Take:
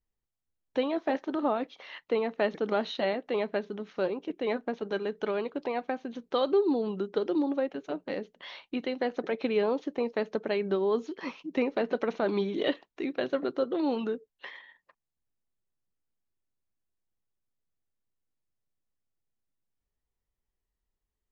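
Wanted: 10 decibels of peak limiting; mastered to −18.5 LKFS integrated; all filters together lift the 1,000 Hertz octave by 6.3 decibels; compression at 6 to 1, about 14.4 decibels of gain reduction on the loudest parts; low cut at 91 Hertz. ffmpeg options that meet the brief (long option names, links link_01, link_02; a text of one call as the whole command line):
ffmpeg -i in.wav -af "highpass=91,equalizer=frequency=1000:width_type=o:gain=8.5,acompressor=threshold=-36dB:ratio=6,volume=24dB,alimiter=limit=-6.5dB:level=0:latency=1" out.wav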